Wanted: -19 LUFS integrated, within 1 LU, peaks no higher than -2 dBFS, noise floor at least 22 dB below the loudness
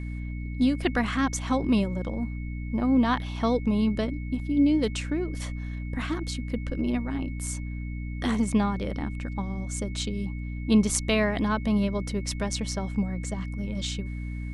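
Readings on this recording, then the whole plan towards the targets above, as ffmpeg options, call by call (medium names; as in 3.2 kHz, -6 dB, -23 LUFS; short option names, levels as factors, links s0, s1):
hum 60 Hz; highest harmonic 300 Hz; hum level -31 dBFS; steady tone 2.2 kHz; tone level -47 dBFS; loudness -28.0 LUFS; peak level -7.5 dBFS; loudness target -19.0 LUFS
-> -af "bandreject=f=60:t=h:w=6,bandreject=f=120:t=h:w=6,bandreject=f=180:t=h:w=6,bandreject=f=240:t=h:w=6,bandreject=f=300:t=h:w=6"
-af "bandreject=f=2200:w=30"
-af "volume=2.82,alimiter=limit=0.794:level=0:latency=1"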